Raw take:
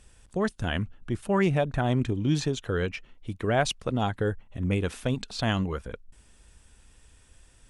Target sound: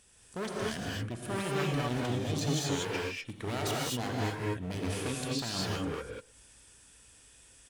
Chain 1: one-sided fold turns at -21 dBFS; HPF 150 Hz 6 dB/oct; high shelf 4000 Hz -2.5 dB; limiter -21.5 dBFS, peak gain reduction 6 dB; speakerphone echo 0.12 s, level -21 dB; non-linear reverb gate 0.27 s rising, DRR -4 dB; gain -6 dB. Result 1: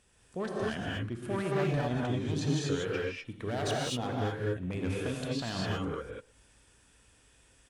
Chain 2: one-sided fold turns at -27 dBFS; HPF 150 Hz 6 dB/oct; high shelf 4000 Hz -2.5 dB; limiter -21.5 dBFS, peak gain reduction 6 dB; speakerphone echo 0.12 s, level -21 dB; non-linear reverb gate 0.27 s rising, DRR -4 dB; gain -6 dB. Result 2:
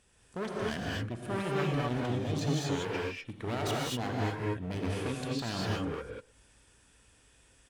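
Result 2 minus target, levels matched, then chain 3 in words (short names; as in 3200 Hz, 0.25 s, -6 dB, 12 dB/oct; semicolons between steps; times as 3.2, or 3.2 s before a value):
8000 Hz band -6.0 dB
one-sided fold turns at -27 dBFS; HPF 150 Hz 6 dB/oct; high shelf 4000 Hz +8 dB; limiter -21.5 dBFS, peak gain reduction 7.5 dB; speakerphone echo 0.12 s, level -21 dB; non-linear reverb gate 0.27 s rising, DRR -4 dB; gain -6 dB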